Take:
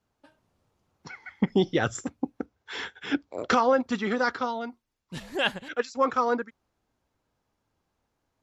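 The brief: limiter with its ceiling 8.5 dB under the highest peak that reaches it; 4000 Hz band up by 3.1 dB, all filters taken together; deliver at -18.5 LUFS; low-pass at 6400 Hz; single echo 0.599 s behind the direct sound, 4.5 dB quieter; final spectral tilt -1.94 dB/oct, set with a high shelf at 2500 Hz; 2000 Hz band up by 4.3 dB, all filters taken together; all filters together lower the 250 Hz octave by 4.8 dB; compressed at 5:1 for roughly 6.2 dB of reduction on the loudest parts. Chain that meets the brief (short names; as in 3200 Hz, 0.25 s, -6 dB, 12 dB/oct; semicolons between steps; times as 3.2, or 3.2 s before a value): LPF 6400 Hz; bell 250 Hz -6 dB; bell 2000 Hz +8 dB; high shelf 2500 Hz -8 dB; bell 4000 Hz +8 dB; compressor 5:1, threshold -24 dBFS; limiter -20 dBFS; echo 0.599 s -4.5 dB; gain +14 dB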